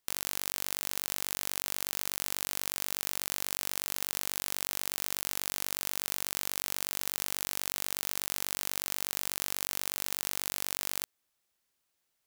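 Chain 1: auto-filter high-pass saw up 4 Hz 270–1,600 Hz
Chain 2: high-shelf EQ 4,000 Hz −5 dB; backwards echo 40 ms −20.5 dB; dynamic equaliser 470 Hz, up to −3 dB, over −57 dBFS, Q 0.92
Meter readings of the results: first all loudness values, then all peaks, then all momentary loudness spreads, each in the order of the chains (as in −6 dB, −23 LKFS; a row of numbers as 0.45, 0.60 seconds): −32.5, −36.5 LKFS; −6.0, −10.0 dBFS; 0, 0 LU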